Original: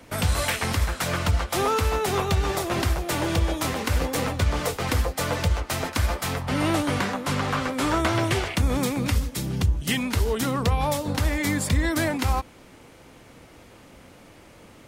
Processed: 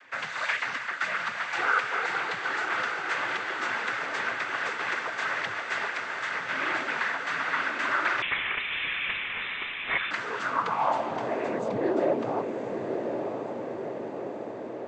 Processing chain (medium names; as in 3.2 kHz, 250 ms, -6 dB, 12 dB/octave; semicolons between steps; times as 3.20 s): in parallel at +2 dB: peak limiter -19 dBFS, peak gain reduction 6.5 dB; 5.85–6.33 s: on the sum: compression, threshold -20 dBFS, peak gain reduction 7 dB; noise-vocoded speech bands 16; on a send: echo that smears into a reverb 1065 ms, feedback 67%, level -5.5 dB; on the sum: band-pass sweep 1.7 kHz -> 500 Hz, 10.19–11.77 s; 8.22–10.11 s: frequency inversion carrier 3.8 kHz